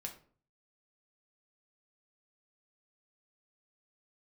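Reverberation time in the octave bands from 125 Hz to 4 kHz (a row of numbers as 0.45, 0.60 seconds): 0.65, 0.55, 0.50, 0.45, 0.35, 0.30 seconds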